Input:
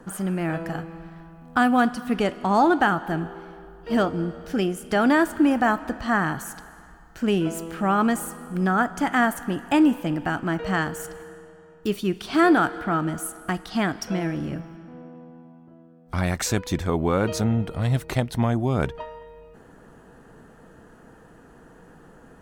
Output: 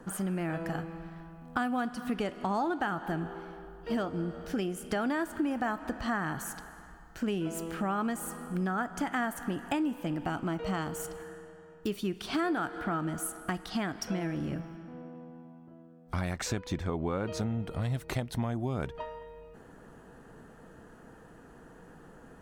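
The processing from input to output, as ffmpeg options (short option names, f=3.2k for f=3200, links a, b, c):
-filter_complex "[0:a]asettb=1/sr,asplit=3[a][b][c];[a]atrim=end=10.244[d];[b]atrim=start=10.24:end=11.18,asetpts=PTS-STARTPTS,afade=t=in:d=0.004:c=qsin,afade=t=out:st=0.936:d=0.004:c=qsin,equalizer=f=1.7k:t=o:w=0.24:g=-10.5[e];[c]atrim=start=11.176[f];[d][e]acrossfade=d=0.004:c1=hsin:c2=qsin[g];[g][f]acrossfade=d=0.004:c1=qsin:c2=hsin,asettb=1/sr,asplit=3[h][i][j];[h]atrim=end=16.334[k];[i]atrim=start=16.33:end=17.41,asetpts=PTS-STARTPTS,afade=t=in:d=0.004:c=qsin,afade=t=out:st=1.076:d=0.004:c=qsin,highshelf=f=7.5k:g=-12[l];[j]atrim=start=17.406[m];[k][l]acrossfade=d=0.004:c1=hsin:c2=qsin[n];[n][m]acrossfade=d=0.004:c1=qsin:c2=hsin,acompressor=threshold=-26dB:ratio=4,volume=-3dB"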